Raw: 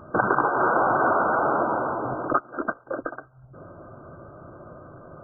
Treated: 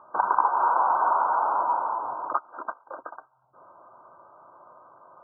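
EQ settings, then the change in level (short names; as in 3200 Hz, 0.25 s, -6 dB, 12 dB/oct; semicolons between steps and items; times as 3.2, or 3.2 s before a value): band-pass 950 Hz, Q 7.2; +7.0 dB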